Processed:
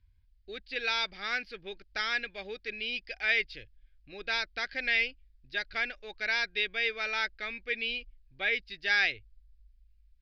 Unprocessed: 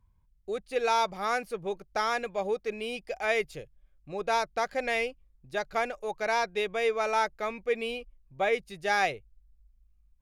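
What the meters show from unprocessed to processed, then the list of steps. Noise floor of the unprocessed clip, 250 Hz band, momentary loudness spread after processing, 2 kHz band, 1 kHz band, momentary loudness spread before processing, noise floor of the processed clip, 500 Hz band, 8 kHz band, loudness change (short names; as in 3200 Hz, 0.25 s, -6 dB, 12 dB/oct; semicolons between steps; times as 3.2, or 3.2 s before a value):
-66 dBFS, -8.5 dB, 12 LU, +3.5 dB, -12.0 dB, 9 LU, -65 dBFS, -12.5 dB, n/a, -1.0 dB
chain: EQ curve 100 Hz 0 dB, 150 Hz -17 dB, 280 Hz -6 dB, 510 Hz -15 dB, 1100 Hz -17 dB, 1600 Hz +2 dB, 4900 Hz +5 dB, 7500 Hz -29 dB; gain +1.5 dB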